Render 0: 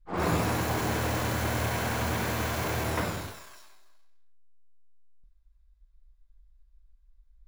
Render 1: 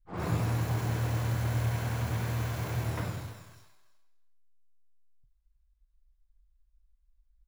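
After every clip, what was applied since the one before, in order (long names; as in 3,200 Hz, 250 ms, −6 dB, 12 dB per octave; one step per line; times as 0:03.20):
parametric band 120 Hz +14 dB 0.74 octaves
single-tap delay 320 ms −17 dB
level −8.5 dB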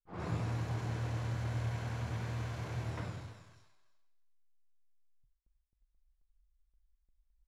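noise gate with hold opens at −60 dBFS
low-pass filter 6,900 Hz 12 dB per octave
level −6.5 dB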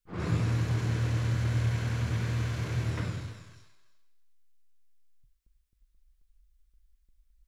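parametric band 780 Hz −9.5 dB 0.95 octaves
level +8.5 dB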